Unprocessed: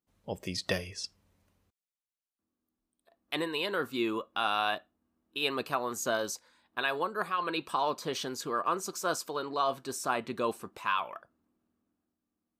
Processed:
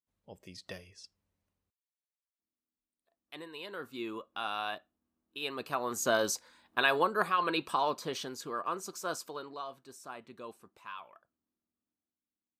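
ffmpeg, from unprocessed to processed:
-af "volume=1.58,afade=t=in:st=3.42:d=0.91:silence=0.446684,afade=t=in:st=5.56:d=0.75:silence=0.298538,afade=t=out:st=7.04:d=1.3:silence=0.354813,afade=t=out:st=9.24:d=0.46:silence=0.334965"

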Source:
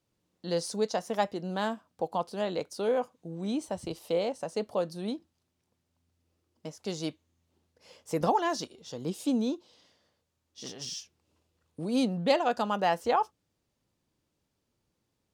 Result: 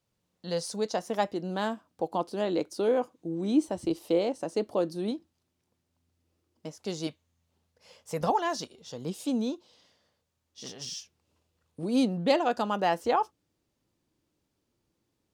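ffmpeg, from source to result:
-af "asetnsamples=n=441:p=0,asendcmd='0.85 equalizer g 5;2.12 equalizer g 11.5;5.11 equalizer g 2;7.07 equalizer g -10;8.3 equalizer g -3;11.83 equalizer g 5.5',equalizer=f=320:t=o:w=0.51:g=-6.5"

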